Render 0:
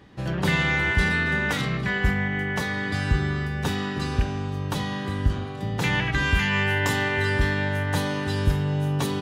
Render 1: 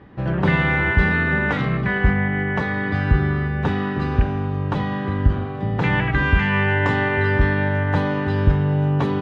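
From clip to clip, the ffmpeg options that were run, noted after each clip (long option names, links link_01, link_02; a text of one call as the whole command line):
ffmpeg -i in.wav -af "lowpass=1900,volume=5.5dB" out.wav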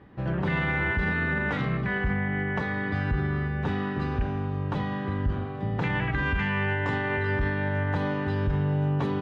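ffmpeg -i in.wav -af "alimiter=limit=-12dB:level=0:latency=1:release=28,volume=-6dB" out.wav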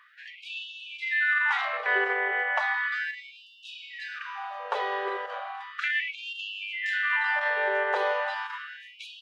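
ffmpeg -i in.wav -af "afftfilt=real='re*gte(b*sr/1024,360*pow(2600/360,0.5+0.5*sin(2*PI*0.35*pts/sr)))':imag='im*gte(b*sr/1024,360*pow(2600/360,0.5+0.5*sin(2*PI*0.35*pts/sr)))':win_size=1024:overlap=0.75,volume=6dB" out.wav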